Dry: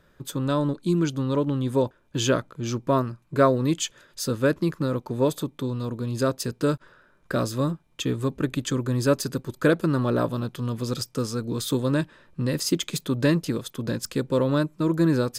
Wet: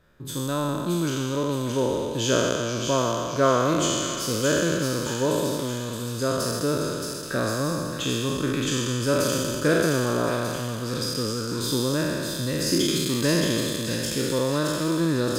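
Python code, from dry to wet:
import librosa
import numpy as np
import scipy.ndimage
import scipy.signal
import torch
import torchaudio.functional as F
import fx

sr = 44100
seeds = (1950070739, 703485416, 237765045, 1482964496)

y = fx.spec_trails(x, sr, decay_s=2.3)
y = fx.echo_wet_highpass(y, sr, ms=621, feedback_pct=54, hz=2200.0, wet_db=-3.5)
y = y * librosa.db_to_amplitude(-4.0)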